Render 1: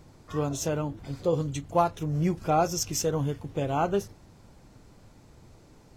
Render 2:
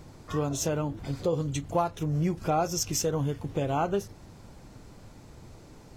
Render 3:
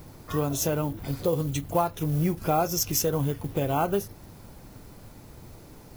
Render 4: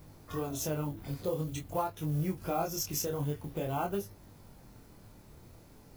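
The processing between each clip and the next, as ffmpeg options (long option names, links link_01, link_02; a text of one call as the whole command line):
ffmpeg -i in.wav -af "acompressor=threshold=-33dB:ratio=2,volume=4.5dB" out.wav
ffmpeg -i in.wav -af "acrusher=bits=7:mode=log:mix=0:aa=0.000001,aexciter=amount=4.6:drive=3.1:freq=10000,volume=2dB" out.wav
ffmpeg -i in.wav -af "flanger=delay=20:depth=7.8:speed=0.48,volume=-5dB" out.wav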